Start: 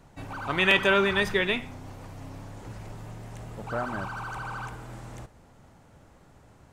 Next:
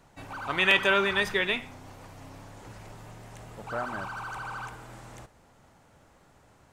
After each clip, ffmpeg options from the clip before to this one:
-af "lowshelf=f=400:g=-7"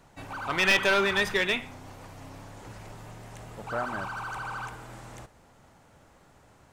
-af "aeval=exprs='clip(val(0),-1,0.0841)':c=same,volume=1.19"

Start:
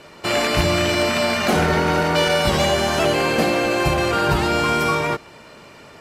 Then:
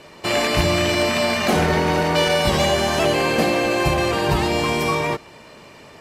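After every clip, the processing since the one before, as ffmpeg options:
-af "bandreject=f=1400:w=10"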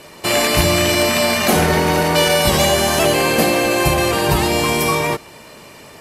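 -af "equalizer=f=12000:w=0.73:g=13,volume=1.41"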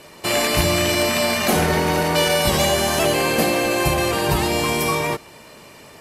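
-af "aeval=exprs='0.891*(cos(1*acos(clip(val(0)/0.891,-1,1)))-cos(1*PI/2))+0.0158*(cos(2*acos(clip(val(0)/0.891,-1,1)))-cos(2*PI/2))':c=same,volume=0.668"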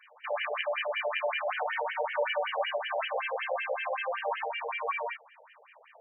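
-af "afftfilt=real='re*between(b*sr/1024,600*pow(2300/600,0.5+0.5*sin(2*PI*5.3*pts/sr))/1.41,600*pow(2300/600,0.5+0.5*sin(2*PI*5.3*pts/sr))*1.41)':imag='im*between(b*sr/1024,600*pow(2300/600,0.5+0.5*sin(2*PI*5.3*pts/sr))/1.41,600*pow(2300/600,0.5+0.5*sin(2*PI*5.3*pts/sr))*1.41)':win_size=1024:overlap=0.75,volume=0.531"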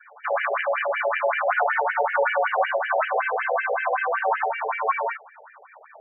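-af "afreqshift=-26,highpass=330,equalizer=f=500:t=q:w=4:g=-3,equalizer=f=730:t=q:w=4:g=4,equalizer=f=1400:t=q:w=4:g=8,lowpass=f=2100:w=0.5412,lowpass=f=2100:w=1.3066,afftfilt=real='re*gte(hypot(re,im),0.00251)':imag='im*gte(hypot(re,im),0.00251)':win_size=1024:overlap=0.75,volume=2.51"

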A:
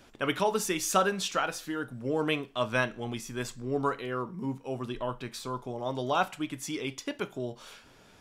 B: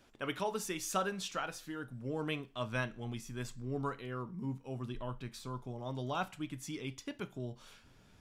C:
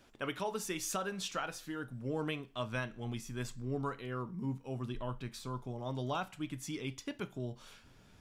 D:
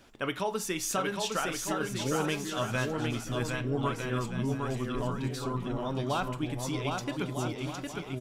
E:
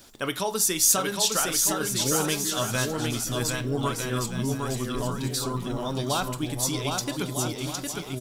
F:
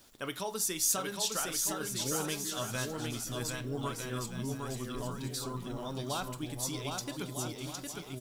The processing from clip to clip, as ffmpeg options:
-af "asubboost=boost=2.5:cutoff=250,volume=0.376"
-af "alimiter=level_in=1.41:limit=0.0631:level=0:latency=1:release=275,volume=0.708,volume=1.19"
-af "aecho=1:1:760|1254|1575|1784|1919:0.631|0.398|0.251|0.158|0.1,volume=1.88"
-af "aexciter=amount=4.4:drive=2.1:freq=3700,volume=1.41"
-af "acrusher=bits=8:mix=0:aa=0.000001,volume=0.355"

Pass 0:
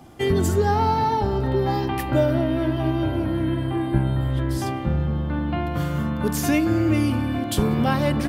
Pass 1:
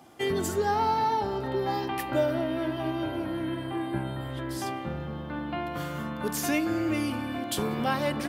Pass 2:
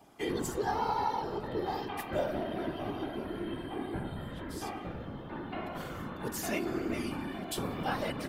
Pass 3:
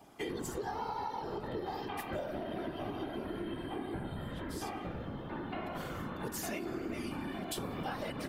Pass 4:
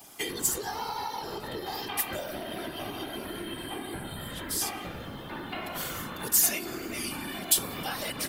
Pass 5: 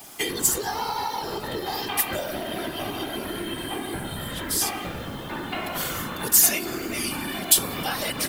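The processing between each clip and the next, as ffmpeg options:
-af "highpass=f=400:p=1,volume=0.708"
-af "afftfilt=real='hypot(re,im)*cos(2*PI*random(0))':imag='hypot(re,im)*sin(2*PI*random(1))':win_size=512:overlap=0.75"
-af "acompressor=threshold=0.0158:ratio=6,volume=1.12"
-af "crystalizer=i=8:c=0"
-af "acrusher=bits=8:mix=0:aa=0.000001,volume=2"

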